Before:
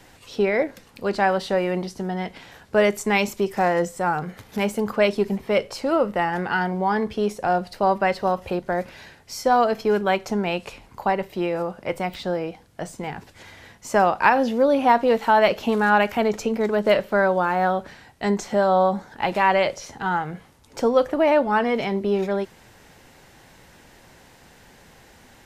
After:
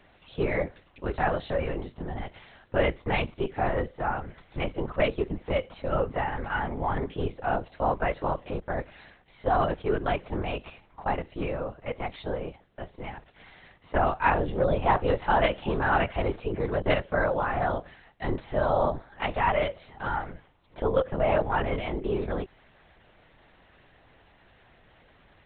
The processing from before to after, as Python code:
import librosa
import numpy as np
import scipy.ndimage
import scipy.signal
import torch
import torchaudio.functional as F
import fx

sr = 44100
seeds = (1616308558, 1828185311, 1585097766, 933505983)

y = scipy.signal.sosfilt(scipy.signal.butter(2, 150.0, 'highpass', fs=sr, output='sos'), x)
y = fx.lpc_vocoder(y, sr, seeds[0], excitation='whisper', order=10)
y = y * 10.0 ** (-6.0 / 20.0)